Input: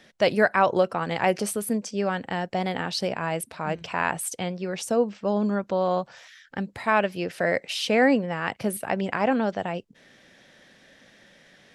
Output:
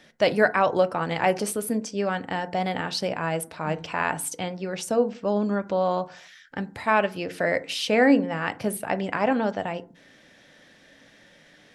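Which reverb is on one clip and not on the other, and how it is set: FDN reverb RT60 0.4 s, low-frequency decay 1.4×, high-frequency decay 0.4×, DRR 11 dB

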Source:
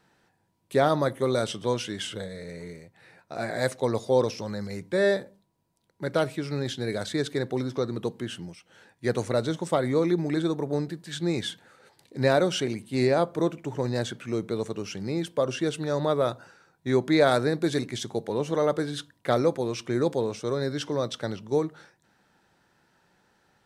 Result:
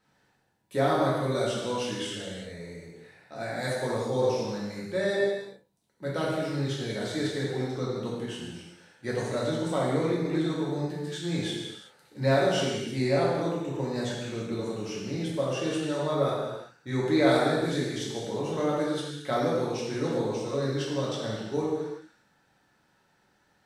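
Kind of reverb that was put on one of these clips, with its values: gated-style reverb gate 420 ms falling, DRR -6.5 dB; trim -8.5 dB

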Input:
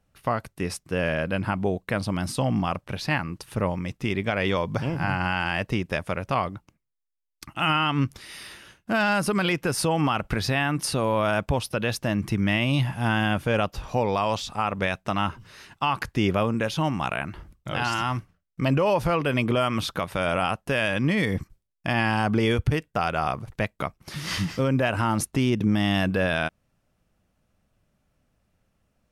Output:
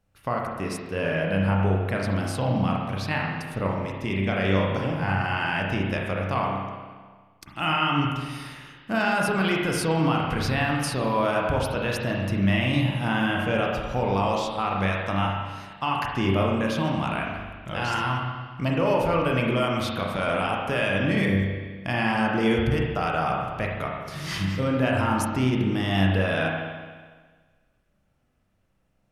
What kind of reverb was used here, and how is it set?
spring tank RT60 1.5 s, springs 31/41 ms, chirp 40 ms, DRR -1.5 dB; trim -3.5 dB

